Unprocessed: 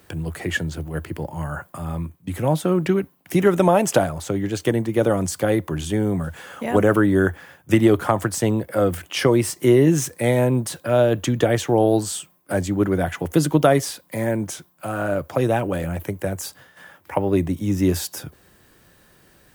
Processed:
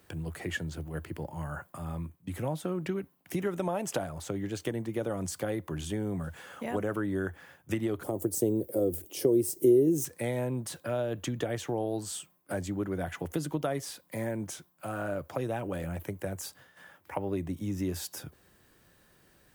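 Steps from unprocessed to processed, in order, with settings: compression 2.5:1, threshold -22 dBFS, peak gain reduction 8.5 dB; 8.03–10.05 s: FFT filter 200 Hz 0 dB, 380 Hz +11 dB, 1.5 kHz -20 dB, 16 kHz +13 dB; trim -8.5 dB

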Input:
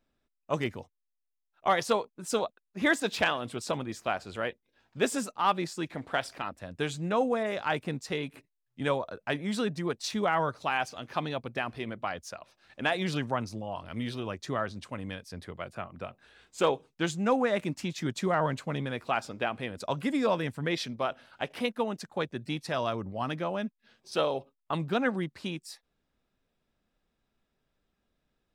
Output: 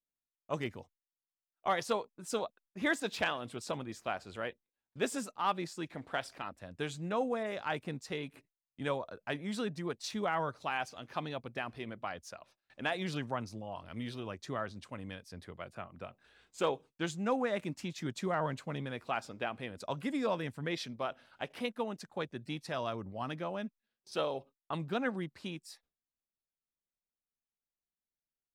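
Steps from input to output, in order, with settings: gate with hold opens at -49 dBFS; trim -6 dB

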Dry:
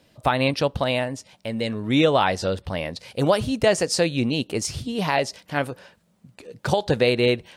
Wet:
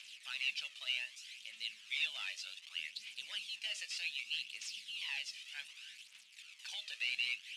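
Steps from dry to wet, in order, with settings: one-bit delta coder 64 kbps, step -33.5 dBFS; ladder band-pass 3 kHz, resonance 60%; tilt EQ +4 dB/octave; phaser 0.65 Hz, delay 1.7 ms, feedback 51%; on a send: reverberation RT60 0.15 s, pre-delay 3 ms, DRR 10 dB; on the sum: trim -8.5 dB

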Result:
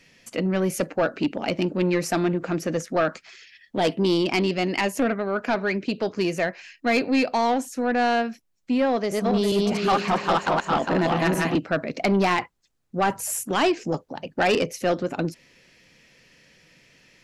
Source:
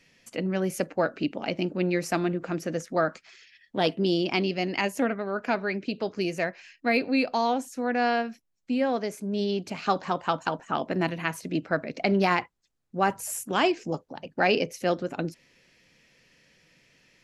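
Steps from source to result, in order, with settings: 8.91–11.58 s: backward echo that repeats 203 ms, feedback 49%, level 0 dB; saturation -19.5 dBFS, distortion -13 dB; trim +5.5 dB

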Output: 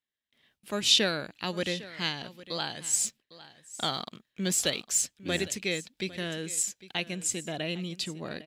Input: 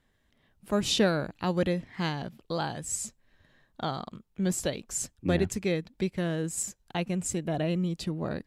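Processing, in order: frequency weighting D; gate with hold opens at -51 dBFS; treble shelf 12 kHz +10.5 dB; 2.93–5.01 s: waveshaping leveller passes 1; delay 804 ms -17.5 dB; trim -4.5 dB

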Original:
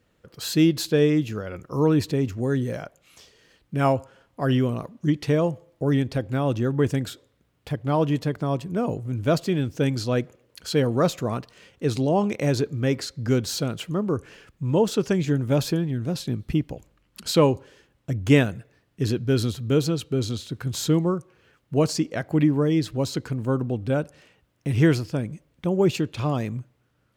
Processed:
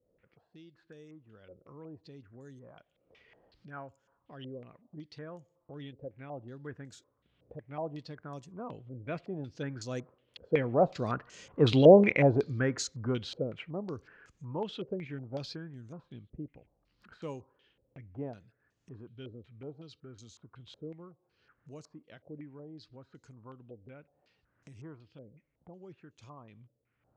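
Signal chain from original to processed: fade-in on the opening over 2.20 s; Doppler pass-by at 11.81 s, 7 m/s, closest 2.7 m; upward compressor, threshold -47 dBFS; step-sequenced low-pass 5.4 Hz 520–6700 Hz

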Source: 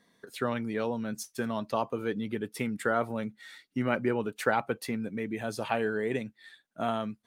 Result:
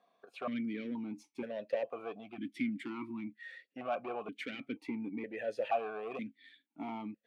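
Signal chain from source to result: spectral selection erased 2.23–3.45 s, 380–940 Hz; saturation -27 dBFS, distortion -10 dB; stepped vowel filter 2.1 Hz; trim +8.5 dB

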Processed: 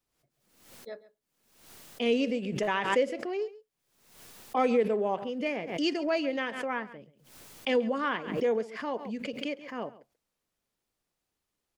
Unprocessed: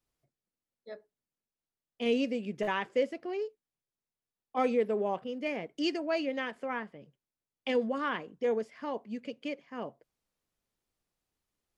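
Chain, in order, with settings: bass shelf 130 Hz -5 dB; delay 136 ms -18.5 dB; swell ahead of each attack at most 73 dB/s; trim +2.5 dB

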